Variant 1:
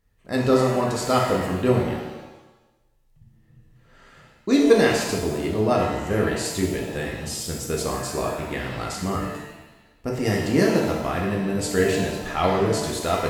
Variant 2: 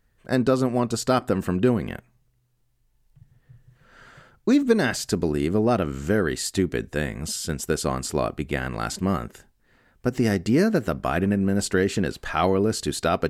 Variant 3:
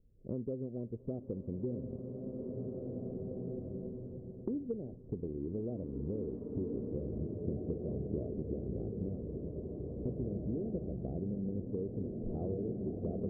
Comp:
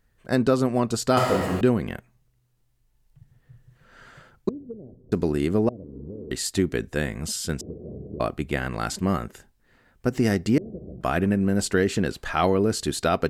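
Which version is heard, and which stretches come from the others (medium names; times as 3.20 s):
2
1.17–1.61 s: from 1
4.49–5.12 s: from 3
5.69–6.31 s: from 3
7.61–8.20 s: from 3
10.58–11.01 s: from 3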